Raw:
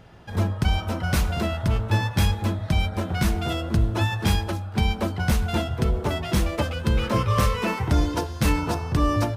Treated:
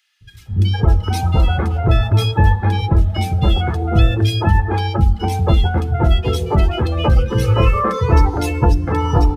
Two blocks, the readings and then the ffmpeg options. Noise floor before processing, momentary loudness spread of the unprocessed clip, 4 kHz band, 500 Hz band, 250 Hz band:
-35 dBFS, 4 LU, +4.5 dB, +7.0 dB, +4.0 dB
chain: -filter_complex "[0:a]aecho=1:1:2.4:0.4,asplit=2[s0][s1];[s1]acompressor=threshold=0.0316:ratio=6,volume=1.26[s2];[s0][s2]amix=inputs=2:normalize=0,acrossover=split=290|2100[s3][s4][s5];[s3]adelay=210[s6];[s4]adelay=460[s7];[s6][s7][s5]amix=inputs=3:normalize=0,afftdn=nr=14:nf=-27,volume=1.88"

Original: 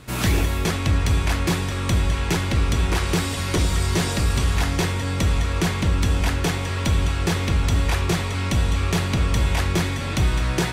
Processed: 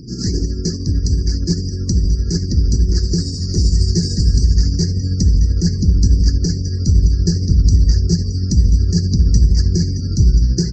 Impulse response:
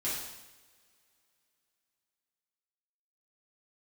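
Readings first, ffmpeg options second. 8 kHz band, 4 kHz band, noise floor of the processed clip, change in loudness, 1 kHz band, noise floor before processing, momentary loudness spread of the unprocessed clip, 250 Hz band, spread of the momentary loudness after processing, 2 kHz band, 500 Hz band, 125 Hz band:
+3.0 dB, +1.5 dB, -23 dBFS, +6.0 dB, under -25 dB, -26 dBFS, 2 LU, +5.5 dB, 6 LU, under -15 dB, -2.5 dB, +7.0 dB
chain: -filter_complex "[0:a]firequalizer=gain_entry='entry(110,0);entry(160,8);entry(410,3);entry(600,-17);entry(1000,-15);entry(1700,-7);entry(3100,-24);entry(4800,14);entry(10000,-8)':delay=0.05:min_phase=1,asplit=2[s0][s1];[1:a]atrim=start_sample=2205[s2];[s1][s2]afir=irnorm=-1:irlink=0,volume=0.119[s3];[s0][s3]amix=inputs=2:normalize=0,acompressor=mode=upward:threshold=0.0794:ratio=2.5,asubboost=boost=3.5:cutoff=140,afftdn=nr=30:nf=-32,asplit=2[s4][s5];[s5]adelay=1341,volume=0.112,highshelf=f=4000:g=-30.2[s6];[s4][s6]amix=inputs=2:normalize=0,tremolo=f=13:d=0.41,volume=0.891"

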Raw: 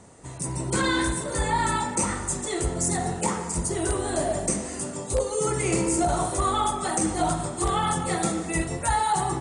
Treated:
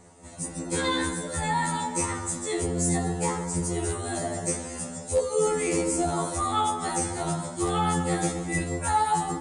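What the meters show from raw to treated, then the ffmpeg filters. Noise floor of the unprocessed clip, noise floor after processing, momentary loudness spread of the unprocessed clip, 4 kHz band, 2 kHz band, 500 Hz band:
-36 dBFS, -40 dBFS, 5 LU, -2.0 dB, -2.5 dB, -0.5 dB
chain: -af "afftfilt=real='re*2*eq(mod(b,4),0)':imag='im*2*eq(mod(b,4),0)':win_size=2048:overlap=0.75"

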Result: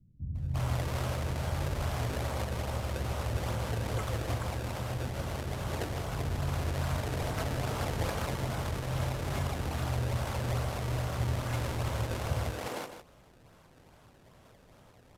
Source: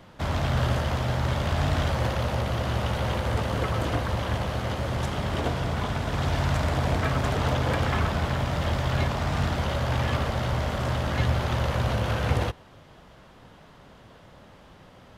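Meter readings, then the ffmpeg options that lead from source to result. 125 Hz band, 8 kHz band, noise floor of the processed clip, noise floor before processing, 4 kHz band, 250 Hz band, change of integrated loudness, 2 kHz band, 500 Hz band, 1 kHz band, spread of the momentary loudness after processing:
-6.5 dB, -1.5 dB, -59 dBFS, -51 dBFS, -8.0 dB, -8.0 dB, -7.0 dB, -9.0 dB, -7.5 dB, -8.5 dB, 3 LU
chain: -filter_complex "[0:a]equalizer=f=120:t=o:w=0.24:g=3.5,bandreject=f=1800:w=15,acrusher=samples=24:mix=1:aa=0.000001:lfo=1:lforange=38.4:lforate=2.4,asplit=2[s0][s1];[s1]aecho=0:1:156:0.335[s2];[s0][s2]amix=inputs=2:normalize=0,aresample=32000,aresample=44100,acrossover=split=210[s3][s4];[s4]adelay=350[s5];[s3][s5]amix=inputs=2:normalize=0,volume=0.422"

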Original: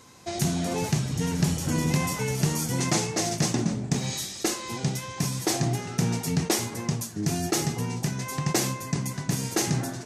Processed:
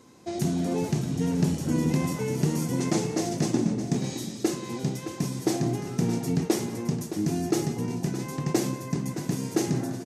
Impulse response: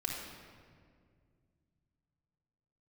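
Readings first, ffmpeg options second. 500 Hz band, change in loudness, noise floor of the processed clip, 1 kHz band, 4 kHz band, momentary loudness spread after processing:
+2.0 dB, -1.0 dB, -39 dBFS, -3.5 dB, -7.0 dB, 5 LU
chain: -filter_complex "[0:a]equalizer=f=300:w=0.67:g=11.5,asplit=2[s0][s1];[s1]aecho=0:1:182|617:0.126|0.282[s2];[s0][s2]amix=inputs=2:normalize=0,volume=0.422"

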